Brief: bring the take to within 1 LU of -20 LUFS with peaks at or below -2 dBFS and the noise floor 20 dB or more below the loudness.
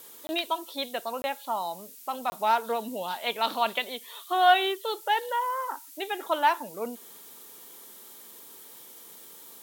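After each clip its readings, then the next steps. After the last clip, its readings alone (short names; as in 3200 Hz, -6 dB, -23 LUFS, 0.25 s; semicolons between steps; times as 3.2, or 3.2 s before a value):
dropouts 3; longest dropout 20 ms; noise floor -48 dBFS; noise floor target -49 dBFS; loudness -28.5 LUFS; peak -8.0 dBFS; loudness target -20.0 LUFS
-> interpolate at 0.27/1.22/2.3, 20 ms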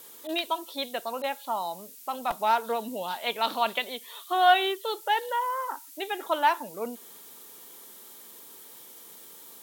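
dropouts 0; noise floor -48 dBFS; noise floor target -49 dBFS
-> denoiser 6 dB, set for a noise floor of -48 dBFS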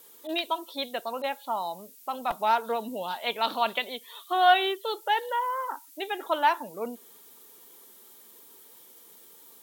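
noise floor -53 dBFS; loudness -28.5 LUFS; peak -8.0 dBFS; loudness target -20.0 LUFS
-> gain +8.5 dB; limiter -2 dBFS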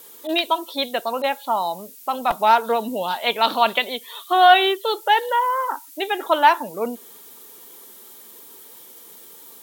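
loudness -20.0 LUFS; peak -2.0 dBFS; noise floor -44 dBFS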